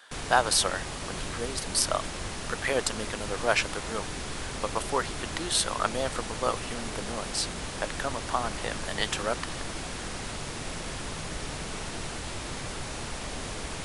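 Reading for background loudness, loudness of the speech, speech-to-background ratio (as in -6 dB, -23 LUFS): -35.5 LUFS, -30.0 LUFS, 5.5 dB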